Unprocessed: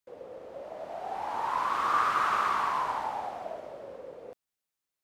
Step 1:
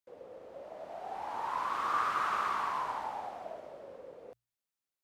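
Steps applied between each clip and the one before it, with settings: hum notches 60/120 Hz; trim -5 dB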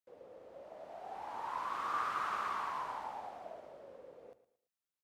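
feedback delay 114 ms, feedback 33%, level -15.5 dB; trim -5 dB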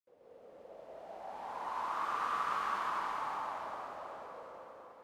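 plate-style reverb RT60 4.9 s, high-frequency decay 0.9×, pre-delay 105 ms, DRR -9.5 dB; trim -8 dB

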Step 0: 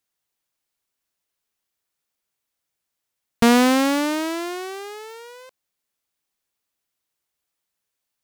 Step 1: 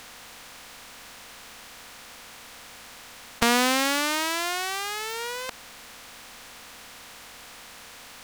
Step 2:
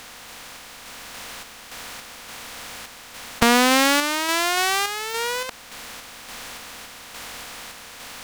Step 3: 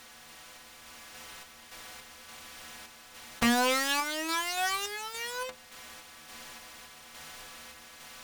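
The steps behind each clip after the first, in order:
spectral levelling over time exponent 0.4; peaking EQ 260 Hz -11 dB 2.6 oct; trim -1.5 dB
saturation -8.5 dBFS, distortion -19 dB; random-step tremolo; trim +9 dB
inharmonic resonator 75 Hz, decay 0.25 s, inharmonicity 0.008; trim -2.5 dB

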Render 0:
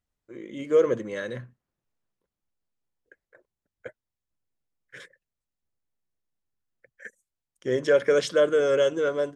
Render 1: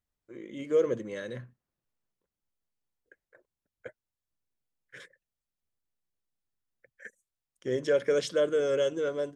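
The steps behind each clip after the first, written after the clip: dynamic bell 1.2 kHz, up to -5 dB, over -38 dBFS, Q 0.74; trim -3.5 dB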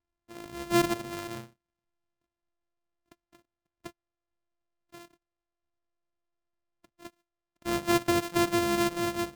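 sorted samples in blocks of 128 samples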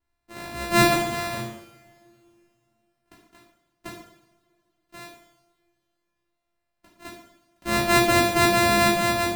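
two-slope reverb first 0.73 s, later 2.9 s, from -24 dB, DRR -6.5 dB; trim +1.5 dB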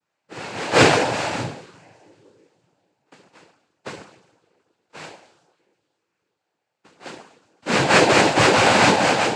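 noise-vocoded speech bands 8; trim +5 dB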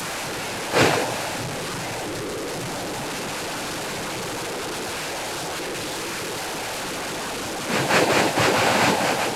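one-bit delta coder 64 kbps, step -19 dBFS; trim -4 dB

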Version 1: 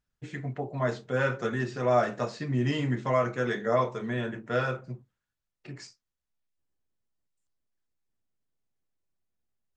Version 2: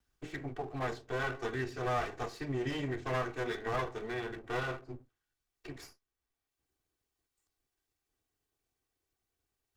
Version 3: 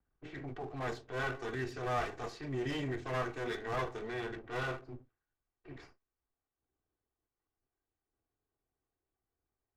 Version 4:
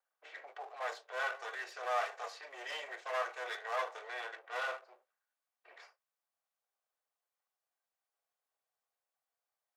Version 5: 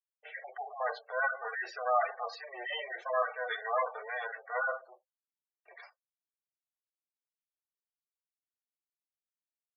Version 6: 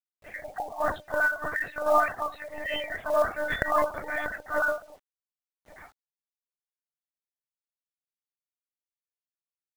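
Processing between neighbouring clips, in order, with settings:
comb filter that takes the minimum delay 2.6 ms; three bands compressed up and down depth 40%; trim -5.5 dB
level-controlled noise filter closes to 1.3 kHz, open at -33 dBFS; transient shaper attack -8 dB, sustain 0 dB
elliptic high-pass 540 Hz, stop band 60 dB; trim +1.5 dB
spectral gate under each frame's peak -10 dB strong; expander -58 dBFS; trim +7 dB
monotone LPC vocoder at 8 kHz 300 Hz; level-controlled noise filter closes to 1.2 kHz, open at -29.5 dBFS; companded quantiser 6-bit; trim +6.5 dB

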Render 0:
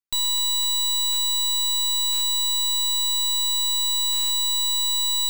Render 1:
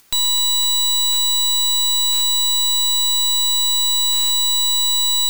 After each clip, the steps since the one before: upward compressor, threshold -33 dBFS; trim +5.5 dB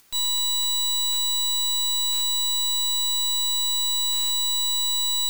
peak limiter -19.5 dBFS, peak gain reduction 9.5 dB; trim -4 dB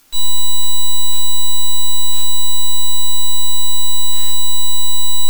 simulated room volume 190 m³, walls furnished, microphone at 3.3 m

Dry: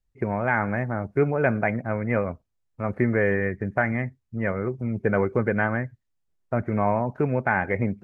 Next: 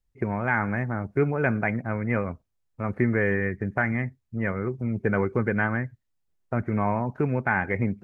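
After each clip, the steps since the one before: dynamic bell 600 Hz, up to -6 dB, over -37 dBFS, Q 1.9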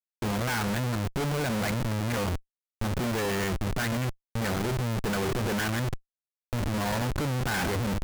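transient shaper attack -11 dB, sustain +6 dB; Schmitt trigger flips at -37 dBFS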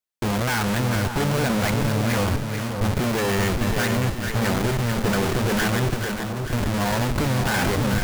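two-band feedback delay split 1.2 kHz, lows 573 ms, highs 439 ms, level -5.5 dB; trim +5.5 dB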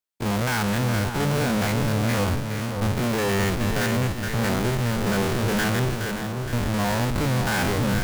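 spectrogram pixelated in time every 50 ms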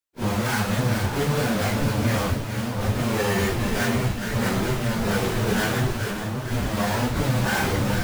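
phase randomisation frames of 100 ms

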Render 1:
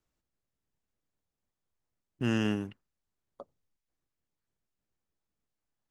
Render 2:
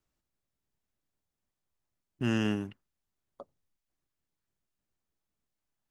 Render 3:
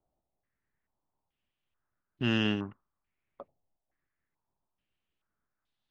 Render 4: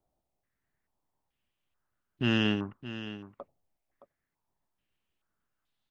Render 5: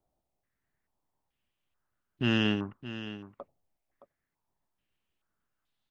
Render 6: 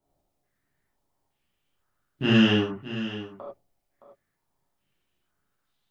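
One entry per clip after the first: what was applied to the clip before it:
band-stop 480 Hz, Q 12
step-sequenced low-pass 2.3 Hz 730–3700 Hz
delay 618 ms -13 dB; trim +1.5 dB
no audible change
gated-style reverb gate 120 ms flat, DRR -5.5 dB

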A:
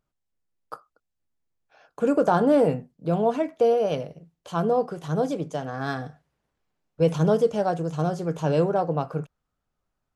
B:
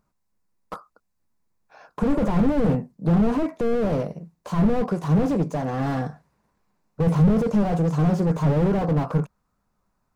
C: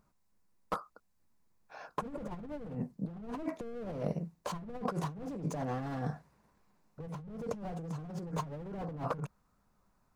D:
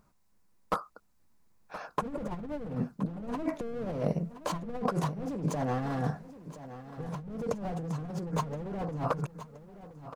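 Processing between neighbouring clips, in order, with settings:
graphic EQ with 31 bands 200 Hz +9 dB, 1 kHz +8 dB, 3.15 kHz -10 dB; slew-rate limiter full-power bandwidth 18 Hz; trim +6.5 dB
compressor with a negative ratio -31 dBFS, ratio -1; trim -8.5 dB
feedback delay 1022 ms, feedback 35%, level -14 dB; trim +5 dB

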